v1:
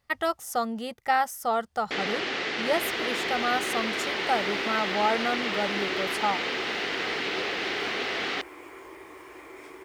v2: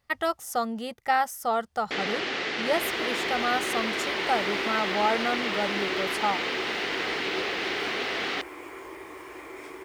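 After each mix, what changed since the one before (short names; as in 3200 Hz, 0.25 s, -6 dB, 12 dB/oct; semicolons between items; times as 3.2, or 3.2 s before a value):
second sound +3.5 dB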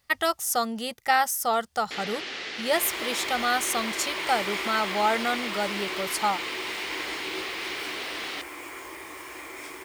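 first sound -9.5 dB; second sound: add bell 410 Hz -6 dB 0.35 oct; master: add high shelf 2500 Hz +11 dB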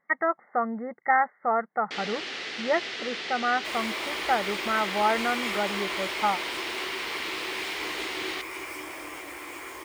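speech: add brick-wall FIR band-pass 150–2200 Hz; second sound: entry +0.90 s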